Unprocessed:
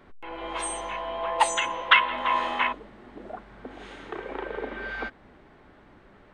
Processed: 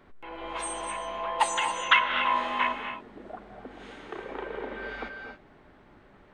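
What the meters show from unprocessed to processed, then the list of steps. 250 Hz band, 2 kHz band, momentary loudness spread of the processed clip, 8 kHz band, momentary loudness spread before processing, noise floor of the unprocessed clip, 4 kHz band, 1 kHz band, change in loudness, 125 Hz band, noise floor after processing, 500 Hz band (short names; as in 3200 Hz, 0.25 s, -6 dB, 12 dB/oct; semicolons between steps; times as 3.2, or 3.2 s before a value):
-1.5 dB, -2.0 dB, 22 LU, -2.0 dB, 23 LU, -55 dBFS, -2.0 dB, -1.5 dB, -2.0 dB, n/a, -56 dBFS, -3.0 dB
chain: non-linear reverb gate 0.3 s rising, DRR 6 dB; gain -3 dB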